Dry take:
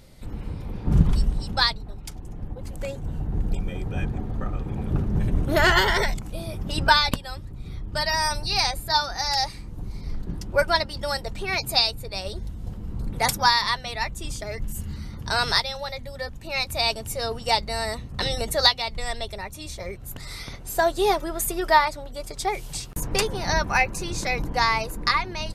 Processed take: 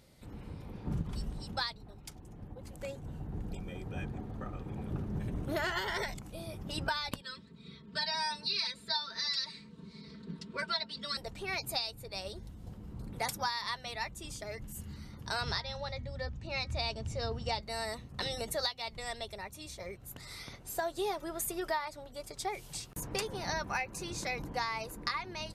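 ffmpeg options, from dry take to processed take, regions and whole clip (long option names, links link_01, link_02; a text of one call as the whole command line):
ffmpeg -i in.wav -filter_complex "[0:a]asettb=1/sr,asplit=3[link_01][link_02][link_03];[link_01]atrim=end=7.214[link_04];[link_02]atrim=start=7.21:end=11.17,asetpts=PTS-STARTPTS,afade=type=in:duration=0.004:curve=qsin,afade=type=out:start_time=3.956:duration=0.004:curve=qsin,asuperstop=centerf=780:order=20:qfactor=3.4,highpass=frequency=100:width=0.5412,highpass=frequency=100:width=1.3066,equalizer=frequency=100:width_type=q:width=4:gain=-8,equalizer=frequency=280:width_type=q:width=4:gain=-5,equalizer=frequency=600:width_type=q:width=4:gain=-8,equalizer=frequency=1200:width_type=q:width=4:gain=-3,equalizer=frequency=3900:width_type=q:width=4:gain=7,equalizer=frequency=6200:width_type=q:width=4:gain=-8,lowpass=frequency=7400:width=0.5412,lowpass=frequency=7400:width=1.3066,aecho=1:1:4.5:0.97,atrim=end_sample=174636[link_05];[link_03]atrim=start=11.166[link_06];[link_04][link_05]acrossfade=duration=0.004:curve1=hsin:curve2=qsin[link_07];[link_07][link_06]acrossfade=duration=0.004:curve1=qsin:curve2=hsin,asettb=1/sr,asplit=3[link_08][link_09][link_10];[link_08]atrim=end=15.414[link_11];[link_09]atrim=start=15.41:end=17.61,asetpts=PTS-STARTPTS,afade=type=in:duration=0.004:curve=qsin,afade=type=out:start_time=2.196:duration=0.004:curve=qsin,lowpass=frequency=6700:width=0.5412,lowpass=frequency=6700:width=1.3066,equalizer=frequency=67:width_type=o:width=2.9:gain=13.5,bandreject=frequency=317.8:width_type=h:width=4,bandreject=frequency=635.6:width_type=h:width=4,bandreject=frequency=953.4:width_type=h:width=4,bandreject=frequency=1271.2:width_type=h:width=4,bandreject=frequency=1589:width_type=h:width=4,bandreject=frequency=1906.8:width_type=h:width=4,bandreject=frequency=2224.6:width_type=h:width=4[link_12];[link_10]atrim=start=17.606[link_13];[link_11][link_12]acrossfade=duration=0.004:curve1=hsin:curve2=qsin[link_14];[link_14][link_13]acrossfade=duration=0.004:curve1=qsin:curve2=hsin,highpass=frequency=100:poles=1,acompressor=threshold=-22dB:ratio=6,volume=-8.5dB" out.wav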